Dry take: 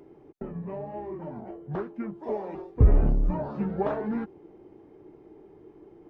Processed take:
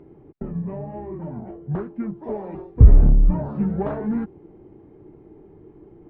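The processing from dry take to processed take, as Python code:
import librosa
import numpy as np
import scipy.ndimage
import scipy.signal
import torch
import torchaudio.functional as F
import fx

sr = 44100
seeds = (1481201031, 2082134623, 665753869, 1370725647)

p1 = 10.0 ** (-25.0 / 20.0) * np.tanh(x / 10.0 ** (-25.0 / 20.0))
p2 = x + (p1 * 10.0 ** (-6.5 / 20.0))
p3 = fx.bass_treble(p2, sr, bass_db=10, treble_db=-14)
y = p3 * 10.0 ** (-2.5 / 20.0)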